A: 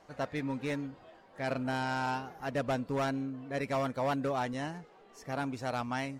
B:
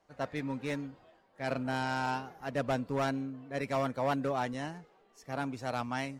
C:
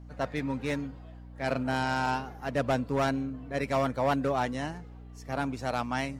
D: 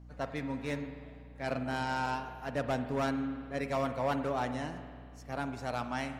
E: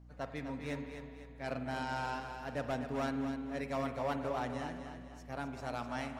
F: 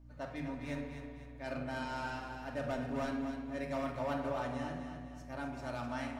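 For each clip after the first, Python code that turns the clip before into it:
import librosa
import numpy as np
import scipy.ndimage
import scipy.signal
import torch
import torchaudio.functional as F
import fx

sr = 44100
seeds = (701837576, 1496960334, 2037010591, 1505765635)

y1 = fx.band_widen(x, sr, depth_pct=40)
y2 = fx.add_hum(y1, sr, base_hz=60, snr_db=15)
y2 = y2 * librosa.db_to_amplitude(4.0)
y3 = fx.rev_spring(y2, sr, rt60_s=2.0, pass_ms=(48,), chirp_ms=40, drr_db=8.5)
y3 = y3 * librosa.db_to_amplitude(-5.0)
y4 = fx.echo_feedback(y3, sr, ms=252, feedback_pct=43, wet_db=-8)
y4 = y4 * librosa.db_to_amplitude(-4.5)
y5 = fx.room_shoebox(y4, sr, seeds[0], volume_m3=1900.0, walls='furnished', distance_m=2.6)
y5 = y5 * librosa.db_to_amplitude(-3.5)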